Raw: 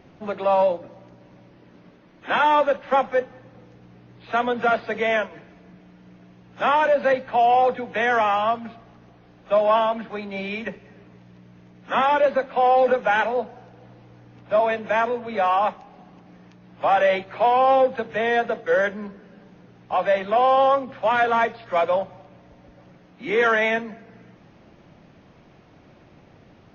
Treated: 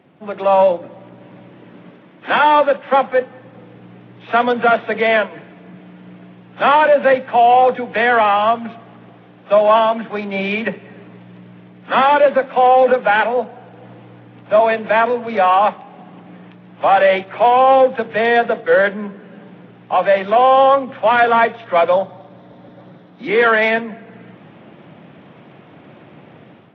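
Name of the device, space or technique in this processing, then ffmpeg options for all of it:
Bluetooth headset: -filter_complex "[0:a]asettb=1/sr,asplit=3[s0][s1][s2];[s0]atrim=end=21.924[s3];[s1]atrim=start=21.92:end=23.28,asetpts=PTS-STARTPTS,afade=t=in:d=0.004:c=qsin,afade=t=out:st=1.356:d=0.004:c=qsin,highshelf=f=3800:t=q:w=3:g=11.5[s4];[s2]atrim=start=23.276[s5];[s3][s4]acrossfade=d=0.004:c1=hsin:c2=qsin[s6];[s6][s5]acrossfade=d=0.004:c1=qsin:c2=hsin,highpass=f=120:w=0.5412,highpass=f=120:w=1.3066,dynaudnorm=f=150:g=5:m=3.55,aresample=8000,aresample=44100,volume=0.891" -ar 32000 -c:a sbc -b:a 64k

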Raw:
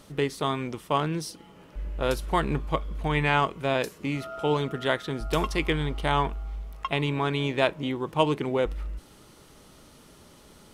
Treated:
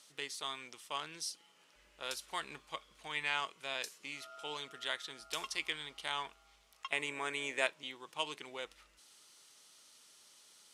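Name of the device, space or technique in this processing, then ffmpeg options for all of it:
piezo pickup straight into a mixer: -filter_complex "[0:a]lowpass=7100,aderivative,asettb=1/sr,asplit=3[s0][s1][s2];[s0]atrim=end=6.924[s3];[s1]atrim=start=6.92:end=7.67,asetpts=PTS-STARTPTS,afade=t=in:d=0.004:c=qsin,afade=t=out:st=0.746:d=0.004:c=qsin,equalizer=f=250:t=o:w=1:g=5,equalizer=f=500:t=o:w=1:g=8,equalizer=f=2000:t=o:w=1:g=8,equalizer=f=4000:t=o:w=1:g=-11,equalizer=f=8000:t=o:w=1:g=11[s4];[s2]atrim=start=7.666[s5];[s3][s4]acrossfade=d=0.004:c1=hsin:c2=qsin[s6];[s6][s5]acrossfade=d=0.004:c1=qsin:c2=hsin,volume=1.26"

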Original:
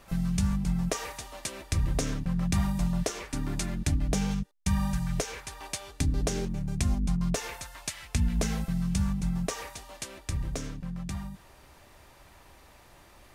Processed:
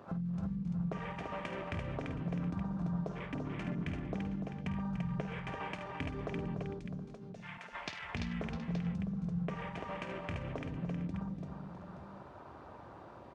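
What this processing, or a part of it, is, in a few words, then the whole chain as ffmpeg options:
AM radio: -filter_complex "[0:a]highpass=120,lowpass=3900,acompressor=threshold=0.00631:ratio=5,asoftclip=type=tanh:threshold=0.0398,asettb=1/sr,asplit=3[s0][s1][s2];[s0]atrim=end=6.704[s3];[s1]atrim=start=6.7:end=7.73,asetpts=PTS-STARTPTS,afade=t=in:d=0.004:c=qsin,afade=t=out:st=1.026:d=0.004:c=qsin,highpass=f=1400:p=1[s4];[s2]atrim=start=7.726[s5];[s3][s4]acrossfade=d=0.004:c1=hsin:c2=qsin[s6];[s6][s5]acrossfade=d=0.004:c1=qsin:c2=hsin,afwtdn=0.00251,aecho=1:1:52|292|340|656|721|873:0.266|0.335|0.596|0.237|0.133|0.251,volume=2"

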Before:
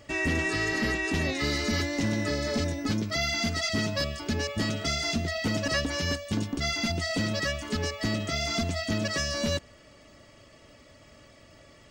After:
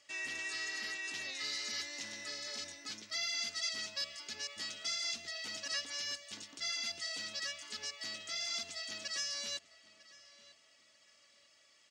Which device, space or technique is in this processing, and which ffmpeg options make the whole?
piezo pickup straight into a mixer: -filter_complex "[0:a]lowpass=6100,aderivative,asplit=2[s0][s1];[s1]adelay=950,lowpass=f=3500:p=1,volume=0.133,asplit=2[s2][s3];[s3]adelay=950,lowpass=f=3500:p=1,volume=0.34,asplit=2[s4][s5];[s5]adelay=950,lowpass=f=3500:p=1,volume=0.34[s6];[s0][s2][s4][s6]amix=inputs=4:normalize=0"

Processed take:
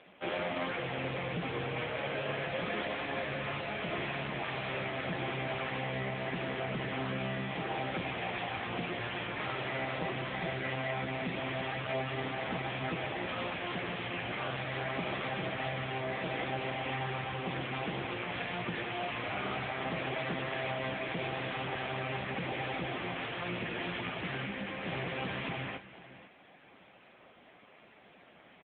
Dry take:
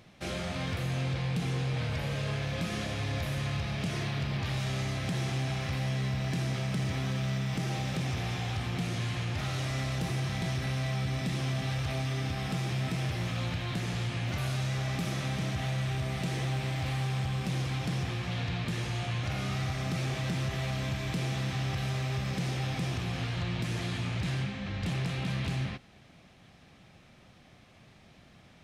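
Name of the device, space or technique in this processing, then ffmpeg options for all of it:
satellite phone: -af "highpass=330,lowpass=3300,aecho=1:1:500:0.15,volume=2.24" -ar 8000 -c:a libopencore_amrnb -b:a 6700

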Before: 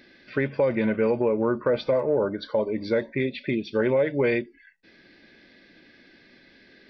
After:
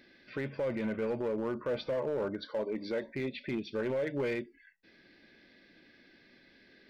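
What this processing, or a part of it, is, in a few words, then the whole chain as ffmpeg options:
limiter into clipper: -filter_complex "[0:a]asettb=1/sr,asplit=3[s0][s1][s2];[s0]atrim=end=2.454[s3];[s1]atrim=start=2.45:end=3.04,asetpts=PTS-STARTPTS,afade=t=in:d=0.004:c=qsin,afade=t=out:st=0.586:d=0.004:c=qsin,highpass=180[s4];[s2]atrim=start=3.036[s5];[s3][s4]acrossfade=d=0.004:c1=hsin:c2=qsin[s6];[s6][s5]acrossfade=d=0.004:c1=qsin:c2=hsin,alimiter=limit=0.126:level=0:latency=1:release=30,asoftclip=type=hard:threshold=0.0891,volume=0.473"

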